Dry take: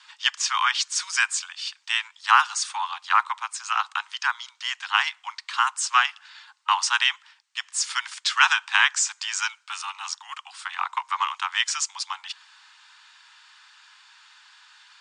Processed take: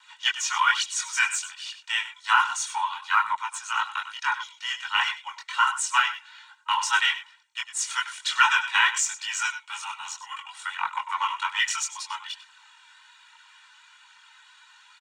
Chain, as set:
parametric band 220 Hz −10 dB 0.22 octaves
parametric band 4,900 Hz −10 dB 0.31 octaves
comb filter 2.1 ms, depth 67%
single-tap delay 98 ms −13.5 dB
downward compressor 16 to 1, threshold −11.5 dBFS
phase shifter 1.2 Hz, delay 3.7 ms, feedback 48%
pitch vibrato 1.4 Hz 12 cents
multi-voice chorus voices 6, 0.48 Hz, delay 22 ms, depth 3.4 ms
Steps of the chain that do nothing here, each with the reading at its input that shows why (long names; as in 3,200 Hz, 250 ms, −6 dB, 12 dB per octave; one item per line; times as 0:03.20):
parametric band 220 Hz: nothing at its input below 680 Hz